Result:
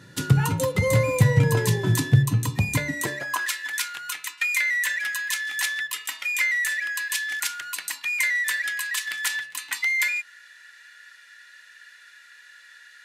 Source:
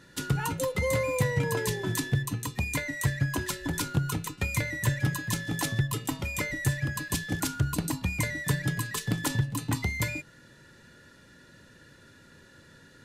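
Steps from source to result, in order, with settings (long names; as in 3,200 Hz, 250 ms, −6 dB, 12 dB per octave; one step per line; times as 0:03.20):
high-pass filter sweep 110 Hz → 1,900 Hz, 0:02.80–0:03.50
hum removal 71.67 Hz, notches 19
level +4.5 dB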